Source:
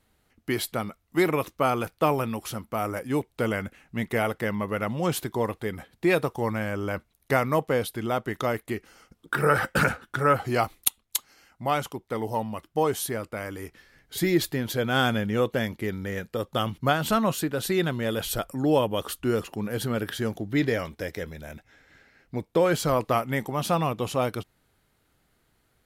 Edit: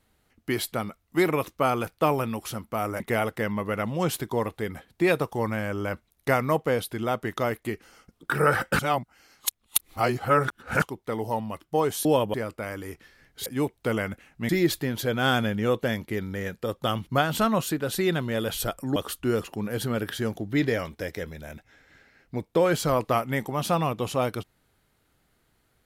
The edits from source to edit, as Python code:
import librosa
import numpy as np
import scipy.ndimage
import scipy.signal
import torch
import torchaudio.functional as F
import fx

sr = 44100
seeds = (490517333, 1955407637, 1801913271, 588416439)

y = fx.edit(x, sr, fx.move(start_s=3.0, length_s=1.03, to_s=14.2),
    fx.reverse_span(start_s=9.82, length_s=2.03),
    fx.move(start_s=18.67, length_s=0.29, to_s=13.08), tone=tone)